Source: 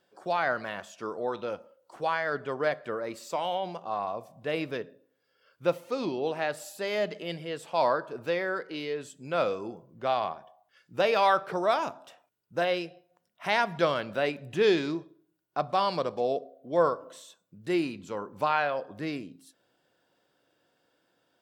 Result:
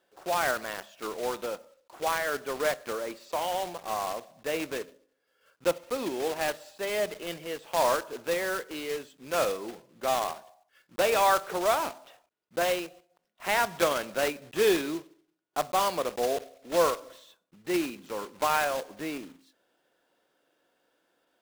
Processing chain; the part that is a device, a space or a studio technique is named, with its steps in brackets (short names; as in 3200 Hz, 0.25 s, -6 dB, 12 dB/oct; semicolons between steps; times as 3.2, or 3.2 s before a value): early digital voice recorder (BPF 240–3900 Hz; block floating point 3-bit)